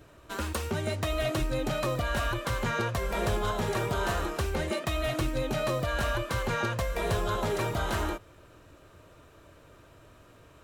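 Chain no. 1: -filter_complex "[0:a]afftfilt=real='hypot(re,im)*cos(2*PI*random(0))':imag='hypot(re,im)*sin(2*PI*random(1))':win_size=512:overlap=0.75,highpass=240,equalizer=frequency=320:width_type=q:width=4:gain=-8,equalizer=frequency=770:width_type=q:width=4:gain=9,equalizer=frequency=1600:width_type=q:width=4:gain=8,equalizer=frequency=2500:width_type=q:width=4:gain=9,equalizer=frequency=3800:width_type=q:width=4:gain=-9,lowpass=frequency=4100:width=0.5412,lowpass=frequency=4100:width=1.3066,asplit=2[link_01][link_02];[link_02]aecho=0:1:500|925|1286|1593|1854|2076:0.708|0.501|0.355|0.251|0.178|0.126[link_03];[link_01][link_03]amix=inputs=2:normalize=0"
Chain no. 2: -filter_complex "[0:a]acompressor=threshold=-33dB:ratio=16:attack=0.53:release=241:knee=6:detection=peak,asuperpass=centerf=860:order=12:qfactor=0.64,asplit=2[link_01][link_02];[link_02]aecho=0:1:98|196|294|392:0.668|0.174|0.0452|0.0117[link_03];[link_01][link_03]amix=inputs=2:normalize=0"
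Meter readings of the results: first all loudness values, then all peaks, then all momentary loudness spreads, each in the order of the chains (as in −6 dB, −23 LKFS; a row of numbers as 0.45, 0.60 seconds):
−32.0, −41.5 LKFS; −17.5, −27.0 dBFS; 10, 17 LU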